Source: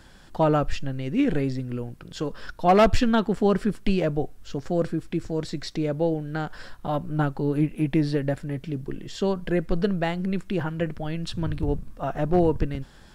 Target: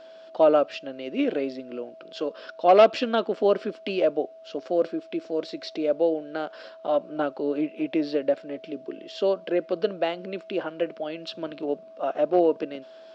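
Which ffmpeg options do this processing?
-af "highpass=f=290:w=0.5412,highpass=f=290:w=1.3066,equalizer=f=590:t=q:w=4:g=8,equalizer=f=900:t=q:w=4:g=-5,equalizer=f=1.8k:t=q:w=4:g=-7,equalizer=f=2.8k:t=q:w=4:g=3,lowpass=f=5.1k:w=0.5412,lowpass=f=5.1k:w=1.3066,aeval=exprs='val(0)+0.00631*sin(2*PI*650*n/s)':c=same"

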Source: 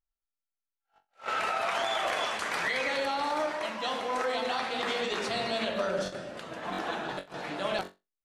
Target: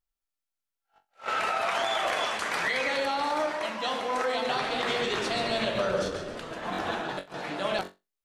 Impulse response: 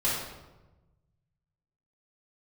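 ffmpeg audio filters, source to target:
-filter_complex "[0:a]asettb=1/sr,asplit=3[a][b][c];[a]atrim=end=4.354[d];[b]atrim=start=4.35:end=7.02,asetpts=PTS-STARTPTS,afade=t=in:d=0.004:c=qsin,afade=t=out:st=2.666:d=0.004:c=qsin,asplit=5[e][f][g][h][i];[f]adelay=136,afreqshift=-100,volume=-8dB[j];[g]adelay=272,afreqshift=-200,volume=-16.9dB[k];[h]adelay=408,afreqshift=-300,volume=-25.7dB[l];[i]adelay=544,afreqshift=-400,volume=-34.6dB[m];[e][j][k][l][m]amix=inputs=5:normalize=0,atrim=end_sample=117747[n];[c]atrim=start=7.016[o];[d][n]acrossfade=d=0.004:c1=hsin:c2=qsin[p];[p][o]acrossfade=d=0.004:c1=qsin:c2=hsin,volume=2dB"

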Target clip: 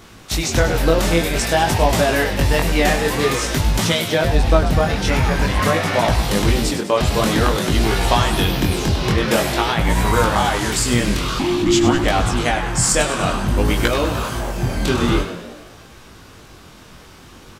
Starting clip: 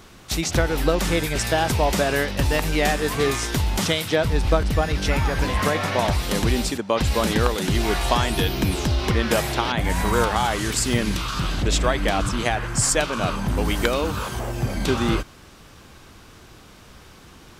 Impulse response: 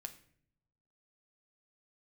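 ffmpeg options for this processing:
-filter_complex "[0:a]asplit=8[a][b][c][d][e][f][g][h];[b]adelay=100,afreqshift=63,volume=-10.5dB[i];[c]adelay=200,afreqshift=126,volume=-15.4dB[j];[d]adelay=300,afreqshift=189,volume=-20.3dB[k];[e]adelay=400,afreqshift=252,volume=-25.1dB[l];[f]adelay=500,afreqshift=315,volume=-30dB[m];[g]adelay=600,afreqshift=378,volume=-34.9dB[n];[h]adelay=700,afreqshift=441,volume=-39.8dB[o];[a][i][j][k][l][m][n][o]amix=inputs=8:normalize=0,flanger=delay=17.5:depth=7:speed=0.5,asettb=1/sr,asplit=3[p][q][r];[p]atrim=end=11.394[s];[q]atrim=start=11.39:end=12.04,asetpts=PTS-STARTPTS,afade=t=in:d=0.004:c=qsin,afade=t=out:st=0.646:d=0.004:c=qsin,afreqshift=-400[t];[r]atrim=start=12.036[u];[s][t]acrossfade=d=0.004:c1=hsin:c2=qsin[v];[v][u]acrossfade=d=0.004:c1=qsin:c2=hsin,volume=6.5dB"

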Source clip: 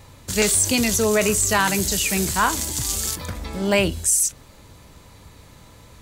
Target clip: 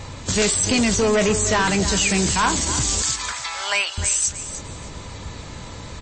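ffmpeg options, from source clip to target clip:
-filter_complex "[0:a]asettb=1/sr,asplit=3[a][b][c];[a]atrim=end=0.804[d];[b]atrim=start=0.8:end=1.97,asetpts=PTS-STARTPTS,afade=t=in:d=0.004:c=qsin,afade=t=out:st=1.166:d=0.004:c=qsin,highshelf=f=7.1k:g=-11.5[e];[c]atrim=start=1.966[f];[d][e]acrossfade=d=0.004:c1=hsin:c2=qsin[g];[g][f]acrossfade=d=0.004:c1=qsin:c2=hsin,asettb=1/sr,asplit=3[h][i][j];[h]atrim=end=3.024[k];[i]atrim=start=3.02:end=3.98,asetpts=PTS-STARTPTS,afade=t=in:d=0.004:c=qsin,afade=t=out:st=0.956:d=0.004:c=qsin,highpass=f=940:w=0.5412,highpass=f=940:w=1.3066[l];[j]atrim=start=3.976[m];[k][l]acrossfade=d=0.004:c1=hsin:c2=qsin[n];[n][m]acrossfade=d=0.004:c1=qsin:c2=hsin,asplit=2[o][p];[p]acompressor=threshold=-32dB:ratio=20,volume=2.5dB[q];[o][q]amix=inputs=2:normalize=0,asoftclip=type=tanh:threshold=-18.5dB,asplit=2[r][s];[s]aecho=0:1:301|602|903:0.251|0.0578|0.0133[t];[r][t]amix=inputs=2:normalize=0,volume=4.5dB" -ar 22050 -c:a libmp3lame -b:a 32k

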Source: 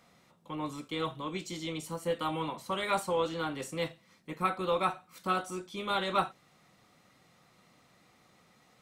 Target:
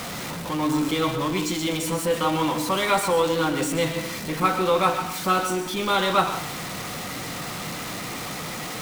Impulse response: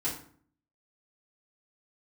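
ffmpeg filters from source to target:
-filter_complex "[0:a]aeval=exprs='val(0)+0.5*0.0188*sgn(val(0))':c=same,asplit=2[a][b];[1:a]atrim=start_sample=2205,adelay=115[c];[b][c]afir=irnorm=-1:irlink=0,volume=-13.5dB[d];[a][d]amix=inputs=2:normalize=0,volume=7dB"

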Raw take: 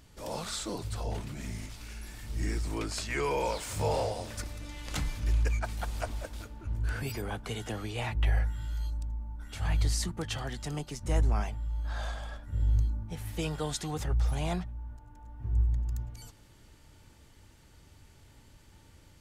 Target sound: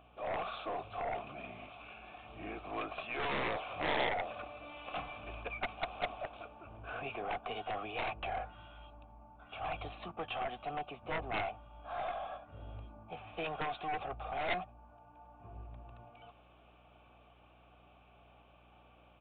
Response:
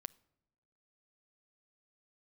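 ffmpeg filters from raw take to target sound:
-filter_complex "[0:a]asplit=3[a][b][c];[a]bandpass=f=730:t=q:w=8,volume=0dB[d];[b]bandpass=f=1.09k:t=q:w=8,volume=-6dB[e];[c]bandpass=f=2.44k:t=q:w=8,volume=-9dB[f];[d][e][f]amix=inputs=3:normalize=0,aeval=exprs='0.0473*(cos(1*acos(clip(val(0)/0.0473,-1,1)))-cos(1*PI/2))+0.0075*(cos(4*acos(clip(val(0)/0.0473,-1,1)))-cos(4*PI/2))+0.0075*(cos(6*acos(clip(val(0)/0.0473,-1,1)))-cos(6*PI/2))+0.015*(cos(7*acos(clip(val(0)/0.0473,-1,1)))-cos(7*PI/2))':c=same,aeval=exprs='val(0)+0.000141*(sin(2*PI*60*n/s)+sin(2*PI*2*60*n/s)/2+sin(2*PI*3*60*n/s)/3+sin(2*PI*4*60*n/s)/4+sin(2*PI*5*60*n/s)/5)':c=same,aresample=8000,asoftclip=type=tanh:threshold=-37.5dB,aresample=44100,volume=12dB"

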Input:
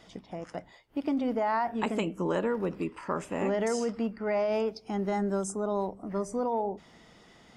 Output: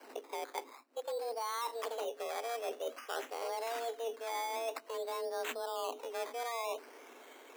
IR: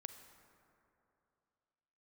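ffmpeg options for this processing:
-af "adynamicequalizer=threshold=0.00224:dfrequency=6200:dqfactor=0.92:tfrequency=6200:tqfactor=0.92:attack=5:release=100:ratio=0.375:range=2.5:mode=boostabove:tftype=bell,areverse,acompressor=threshold=-36dB:ratio=10,areverse,acrusher=samples=13:mix=1:aa=0.000001:lfo=1:lforange=7.8:lforate=0.51,afreqshift=230,volume=1dB"

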